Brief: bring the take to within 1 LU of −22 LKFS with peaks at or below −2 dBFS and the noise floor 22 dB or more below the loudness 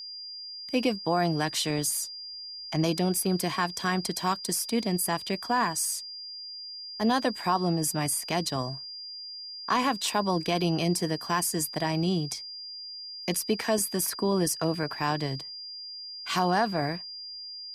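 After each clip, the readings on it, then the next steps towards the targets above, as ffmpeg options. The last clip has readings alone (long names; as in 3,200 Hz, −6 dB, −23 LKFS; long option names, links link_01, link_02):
interfering tone 4,800 Hz; level of the tone −38 dBFS; integrated loudness −28.5 LKFS; sample peak −12.5 dBFS; target loudness −22.0 LKFS
→ -af "bandreject=frequency=4800:width=30"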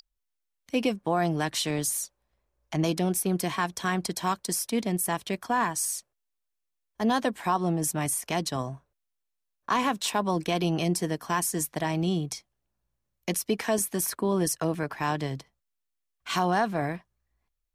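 interfering tone none found; integrated loudness −28.0 LKFS; sample peak −12.5 dBFS; target loudness −22.0 LKFS
→ -af "volume=6dB"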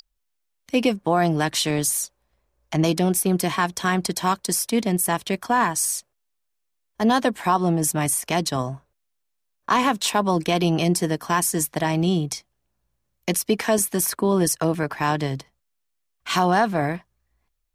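integrated loudness −22.0 LKFS; sample peak −6.5 dBFS; background noise floor −75 dBFS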